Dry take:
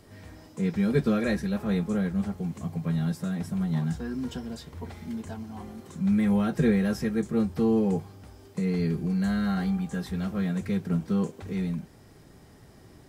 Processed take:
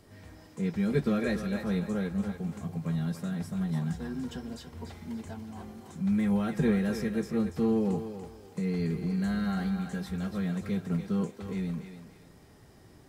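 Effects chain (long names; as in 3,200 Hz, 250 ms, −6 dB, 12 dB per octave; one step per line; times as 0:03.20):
feedback echo with a high-pass in the loop 288 ms, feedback 34%, high-pass 420 Hz, level −7 dB
level −3.5 dB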